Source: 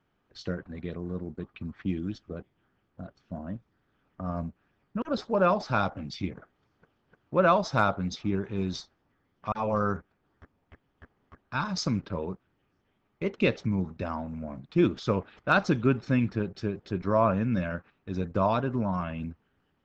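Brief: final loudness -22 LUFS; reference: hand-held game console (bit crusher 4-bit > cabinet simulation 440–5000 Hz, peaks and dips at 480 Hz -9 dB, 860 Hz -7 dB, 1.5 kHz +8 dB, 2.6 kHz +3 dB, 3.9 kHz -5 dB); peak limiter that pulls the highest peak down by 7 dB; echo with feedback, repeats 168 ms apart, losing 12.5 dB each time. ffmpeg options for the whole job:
-af "alimiter=limit=0.15:level=0:latency=1,aecho=1:1:168|336|504:0.237|0.0569|0.0137,acrusher=bits=3:mix=0:aa=0.000001,highpass=440,equalizer=f=480:t=q:w=4:g=-9,equalizer=f=860:t=q:w=4:g=-7,equalizer=f=1500:t=q:w=4:g=8,equalizer=f=2600:t=q:w=4:g=3,equalizer=f=3900:t=q:w=4:g=-5,lowpass=f=5000:w=0.5412,lowpass=f=5000:w=1.3066,volume=2.82"

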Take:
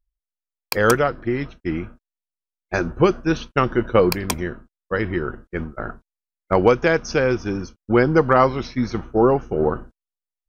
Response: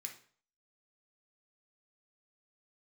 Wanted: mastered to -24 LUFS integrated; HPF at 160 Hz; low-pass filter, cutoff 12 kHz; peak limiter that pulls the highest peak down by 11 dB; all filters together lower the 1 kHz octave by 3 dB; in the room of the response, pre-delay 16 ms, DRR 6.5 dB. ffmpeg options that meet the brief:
-filter_complex "[0:a]highpass=160,lowpass=12000,equalizer=f=1000:t=o:g=-4,alimiter=limit=0.211:level=0:latency=1,asplit=2[s0][s1];[1:a]atrim=start_sample=2205,adelay=16[s2];[s1][s2]afir=irnorm=-1:irlink=0,volume=0.708[s3];[s0][s3]amix=inputs=2:normalize=0,volume=1.26"

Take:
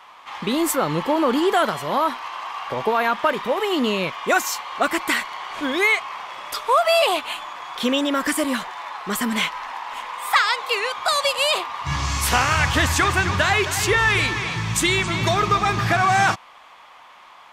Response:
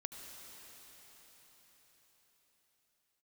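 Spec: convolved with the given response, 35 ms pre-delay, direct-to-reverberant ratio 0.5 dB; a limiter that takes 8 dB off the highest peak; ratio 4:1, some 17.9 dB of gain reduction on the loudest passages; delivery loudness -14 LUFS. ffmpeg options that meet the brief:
-filter_complex "[0:a]acompressor=threshold=0.0158:ratio=4,alimiter=level_in=1.68:limit=0.0631:level=0:latency=1,volume=0.596,asplit=2[s0][s1];[1:a]atrim=start_sample=2205,adelay=35[s2];[s1][s2]afir=irnorm=-1:irlink=0,volume=1.19[s3];[s0][s3]amix=inputs=2:normalize=0,volume=11.2"

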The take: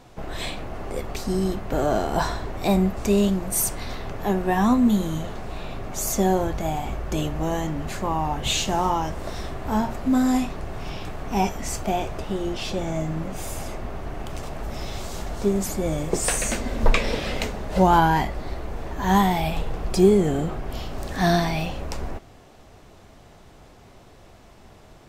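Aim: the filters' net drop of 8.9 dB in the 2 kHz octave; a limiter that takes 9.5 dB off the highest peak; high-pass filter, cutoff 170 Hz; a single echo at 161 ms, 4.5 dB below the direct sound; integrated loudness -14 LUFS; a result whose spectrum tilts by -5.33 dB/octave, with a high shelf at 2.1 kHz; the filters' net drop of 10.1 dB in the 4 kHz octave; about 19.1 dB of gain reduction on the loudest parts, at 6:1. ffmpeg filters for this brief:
-af "highpass=170,equalizer=f=2000:t=o:g=-7.5,highshelf=f=2100:g=-5.5,equalizer=f=4000:t=o:g=-5,acompressor=threshold=0.0224:ratio=6,alimiter=level_in=1.88:limit=0.0631:level=0:latency=1,volume=0.531,aecho=1:1:161:0.596,volume=15.8"

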